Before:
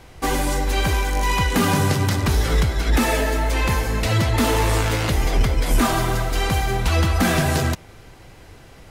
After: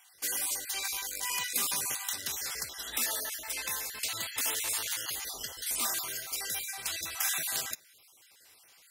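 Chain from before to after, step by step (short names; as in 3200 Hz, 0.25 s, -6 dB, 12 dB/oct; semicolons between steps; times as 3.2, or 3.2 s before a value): random spectral dropouts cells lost 34%; differentiator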